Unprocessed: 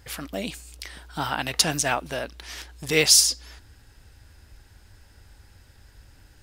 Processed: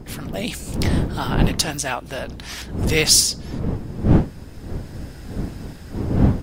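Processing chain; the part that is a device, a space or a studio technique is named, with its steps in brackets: smartphone video outdoors (wind noise 200 Hz -27 dBFS; level rider gain up to 12.5 dB; trim -1.5 dB; AAC 64 kbps 48 kHz)

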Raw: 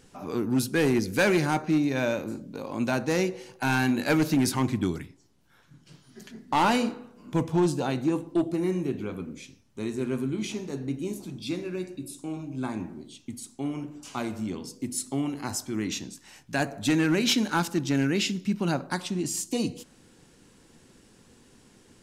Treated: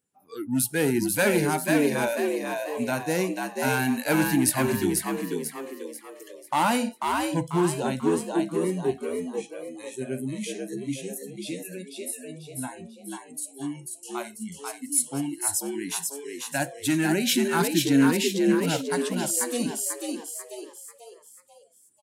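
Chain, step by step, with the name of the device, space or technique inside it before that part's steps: spectral noise reduction 27 dB; 17.60–18.10 s: fifteen-band graphic EQ 250 Hz +9 dB, 1 kHz +7 dB, 4 kHz +6 dB; frequency-shifting echo 491 ms, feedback 42%, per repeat +71 Hz, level -3.5 dB; budget condenser microphone (high-pass 100 Hz; resonant high shelf 7.6 kHz +8.5 dB, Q 1.5)

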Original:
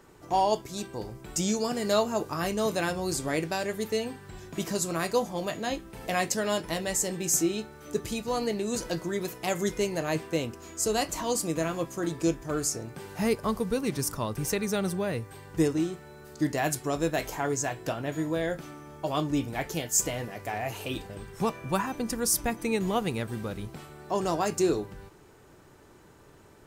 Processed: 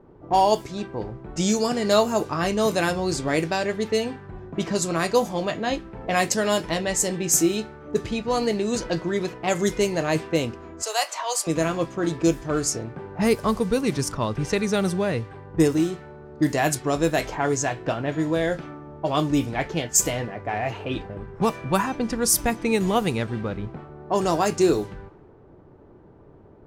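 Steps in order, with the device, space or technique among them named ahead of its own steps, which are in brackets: cassette deck with a dynamic noise filter (white noise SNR 28 dB; level-controlled noise filter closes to 630 Hz, open at -23 dBFS); 10.82–11.47 s: inverse Chebyshev high-pass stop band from 180 Hz, stop band 60 dB; trim +6 dB

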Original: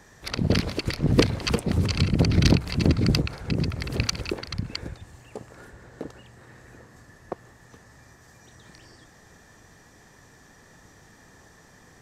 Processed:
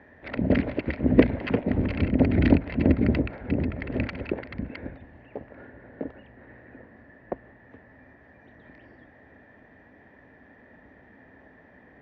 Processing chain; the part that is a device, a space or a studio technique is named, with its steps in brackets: sub-octave bass pedal (octave divider, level -2 dB; cabinet simulation 72–2400 Hz, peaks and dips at 100 Hz -5 dB, 150 Hz -8 dB, 260 Hz +8 dB, 600 Hz +7 dB, 1.2 kHz -8 dB, 1.9 kHz +4 dB); trim -1 dB

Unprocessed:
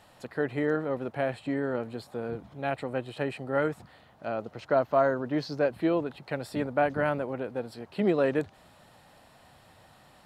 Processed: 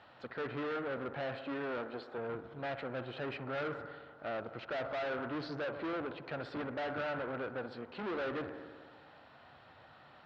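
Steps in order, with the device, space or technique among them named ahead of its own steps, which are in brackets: 1.40–2.18 s: high-pass 260 Hz 12 dB/octave; analogue delay pedal into a guitar amplifier (bucket-brigade echo 63 ms, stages 1024, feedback 75%, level -18 dB; valve stage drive 37 dB, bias 0.65; cabinet simulation 84–4000 Hz, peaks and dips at 110 Hz -3 dB, 190 Hz -7 dB, 1.4 kHz +7 dB); trim +1.5 dB

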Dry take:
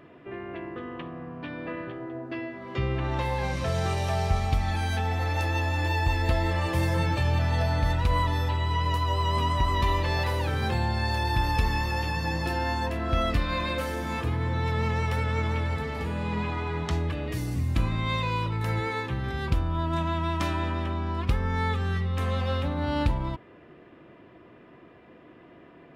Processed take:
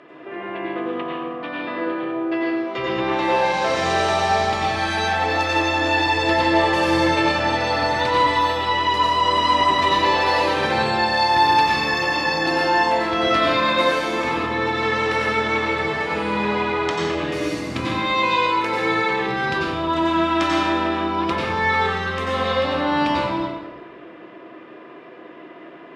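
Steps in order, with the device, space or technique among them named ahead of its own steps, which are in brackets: supermarket ceiling speaker (band-pass 340–6400 Hz; reverberation RT60 1.2 s, pre-delay 85 ms, DRR -3.5 dB); trim +7 dB

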